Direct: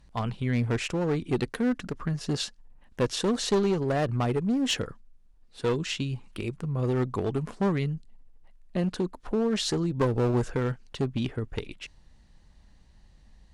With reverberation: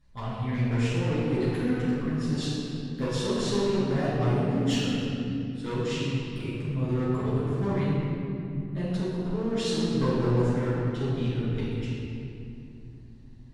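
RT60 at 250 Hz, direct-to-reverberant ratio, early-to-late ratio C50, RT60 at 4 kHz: 4.7 s, −11.5 dB, −4.0 dB, 1.8 s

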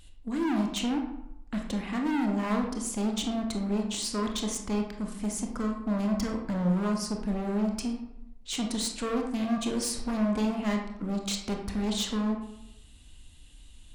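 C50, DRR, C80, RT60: 5.0 dB, 2.0 dB, 8.5 dB, 0.85 s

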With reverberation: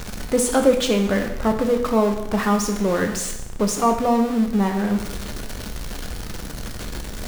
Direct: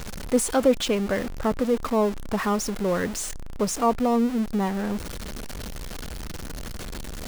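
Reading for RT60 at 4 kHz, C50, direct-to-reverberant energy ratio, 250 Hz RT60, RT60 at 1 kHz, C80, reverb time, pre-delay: 0.80 s, 7.5 dB, 4.0 dB, 0.85 s, 0.85 s, 10.0 dB, 0.85 s, 5 ms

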